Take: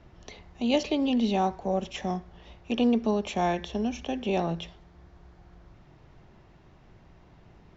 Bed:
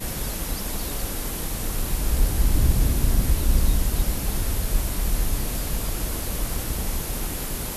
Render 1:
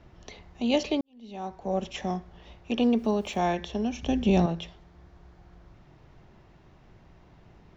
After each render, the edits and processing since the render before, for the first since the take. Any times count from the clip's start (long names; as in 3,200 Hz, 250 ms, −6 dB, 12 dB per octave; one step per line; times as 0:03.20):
0:01.01–0:01.77: fade in quadratic
0:02.80–0:03.39: centre clipping without the shift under −53 dBFS
0:04.03–0:04.46: bass and treble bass +14 dB, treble +6 dB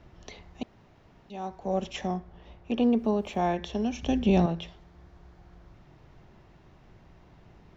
0:00.63–0:01.30: fill with room tone
0:02.07–0:03.64: high-shelf EQ 2,600 Hz −9.5 dB
0:04.18–0:04.65: high-frequency loss of the air 68 metres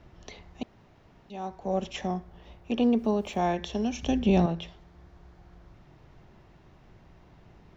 0:02.16–0:04.11: high-shelf EQ 5,400 Hz +7 dB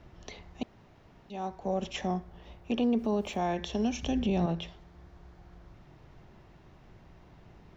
brickwall limiter −20.5 dBFS, peak gain reduction 8 dB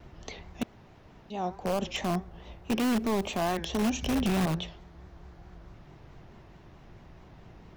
pitch vibrato 4.6 Hz 92 cents
in parallel at −6 dB: wrap-around overflow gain 24 dB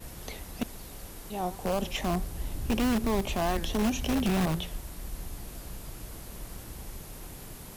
mix in bed −15.5 dB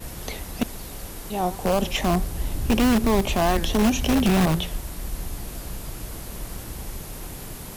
level +7.5 dB